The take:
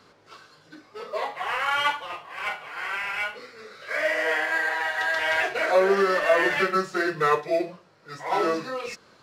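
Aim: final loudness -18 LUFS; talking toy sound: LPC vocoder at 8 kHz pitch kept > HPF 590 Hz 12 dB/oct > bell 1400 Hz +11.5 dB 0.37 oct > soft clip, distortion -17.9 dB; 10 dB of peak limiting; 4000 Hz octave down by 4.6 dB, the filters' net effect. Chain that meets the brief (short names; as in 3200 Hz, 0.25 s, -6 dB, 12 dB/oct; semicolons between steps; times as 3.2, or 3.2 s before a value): bell 4000 Hz -7.5 dB; limiter -18.5 dBFS; LPC vocoder at 8 kHz pitch kept; HPF 590 Hz 12 dB/oct; bell 1400 Hz +11.5 dB 0.37 oct; soft clip -15.5 dBFS; gain +8 dB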